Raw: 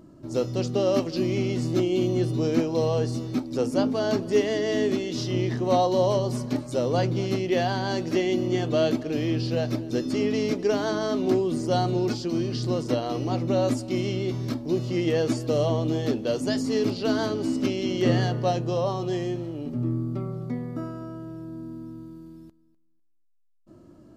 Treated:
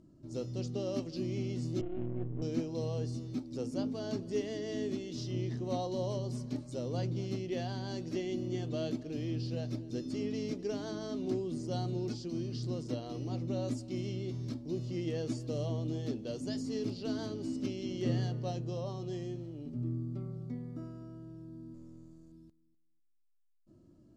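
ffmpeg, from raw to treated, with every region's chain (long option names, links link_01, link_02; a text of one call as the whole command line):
ffmpeg -i in.wav -filter_complex "[0:a]asettb=1/sr,asplit=3[link_01][link_02][link_03];[link_01]atrim=end=1.814[link_04];[link_02]atrim=start=1.81:end=2.42,asetpts=PTS-STARTPTS,afade=type=in:duration=0.004:curve=qsin,afade=type=out:start_time=0.606:duration=0.004:curve=qsin,aeval=exprs='if(lt(val(0),0),0.251*val(0),val(0))':channel_layout=same,adynamicsmooth=sensitivity=2.5:basefreq=740,lowpass=frequency=2600:width=0.5412,lowpass=frequency=2600:width=1.3066[link_05];[link_03]atrim=start=2.416[link_06];[link_04][link_05]acrossfade=duration=0.004:curve1=hsin:curve2=qsin[link_07];[link_07][link_06]acrossfade=duration=0.004:curve1=qsin:curve2=hsin,asettb=1/sr,asplit=3[link_08][link_09][link_10];[link_08]atrim=end=21.744[link_11];[link_09]atrim=start=21.74:end=22.32,asetpts=PTS-STARTPTS,afade=type=in:duration=0.004:curve=qsin,afade=type=out:start_time=0.576:duration=0.004:curve=qsin,aeval=exprs='if(lt(val(0),0),0.447*val(0),val(0))':channel_layout=same,equalizer=frequency=7000:width_type=o:width=0.56:gain=13.5[link_12];[link_10]atrim=start=22.316[link_13];[link_11][link_12]acrossfade=duration=0.004:curve1=hsin:curve2=qsin[link_14];[link_14][link_13]acrossfade=duration=0.004:curve1=qsin:curve2=hsin,lowpass=7800,equalizer=frequency=1200:width=0.36:gain=-11,volume=-7dB" out.wav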